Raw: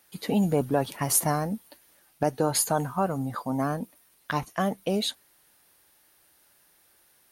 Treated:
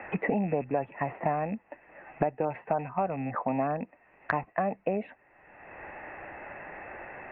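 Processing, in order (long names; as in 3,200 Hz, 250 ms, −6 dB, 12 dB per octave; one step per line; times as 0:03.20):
loose part that buzzes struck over −32 dBFS, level −34 dBFS
Chebyshev low-pass with heavy ripple 2,700 Hz, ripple 9 dB
multiband upward and downward compressor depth 100%
level +1.5 dB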